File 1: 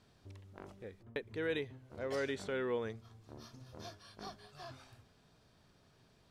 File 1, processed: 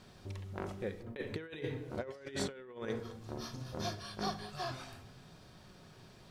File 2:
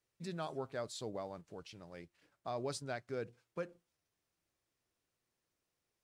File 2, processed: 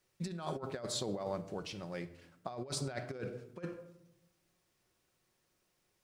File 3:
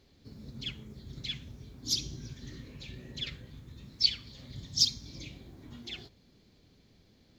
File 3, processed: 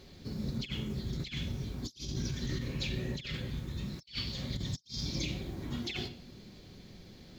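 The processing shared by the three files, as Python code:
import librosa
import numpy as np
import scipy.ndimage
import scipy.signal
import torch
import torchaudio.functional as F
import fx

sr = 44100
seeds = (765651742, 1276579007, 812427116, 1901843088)

y = fx.room_shoebox(x, sr, seeds[0], volume_m3=2100.0, walls='furnished', distance_m=1.0)
y = fx.over_compress(y, sr, threshold_db=-43.0, ratio=-0.5)
y = y * librosa.db_to_amplitude(5.0)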